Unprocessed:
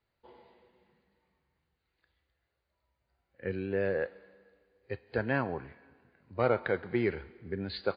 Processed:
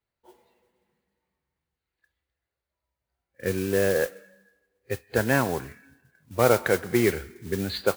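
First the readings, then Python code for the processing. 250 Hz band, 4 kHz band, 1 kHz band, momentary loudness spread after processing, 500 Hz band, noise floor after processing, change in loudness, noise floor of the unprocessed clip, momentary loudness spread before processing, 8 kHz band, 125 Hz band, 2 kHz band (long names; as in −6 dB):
+7.5 dB, +10.5 dB, +7.5 dB, 14 LU, +7.5 dB, below −85 dBFS, +8.0 dB, −83 dBFS, 14 LU, can't be measured, +7.5 dB, +7.5 dB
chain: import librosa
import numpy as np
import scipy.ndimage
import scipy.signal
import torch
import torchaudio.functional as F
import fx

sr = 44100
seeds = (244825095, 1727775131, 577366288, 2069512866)

y = fx.noise_reduce_blind(x, sr, reduce_db=13)
y = fx.mod_noise(y, sr, seeds[0], snr_db=14)
y = y * 10.0 ** (7.5 / 20.0)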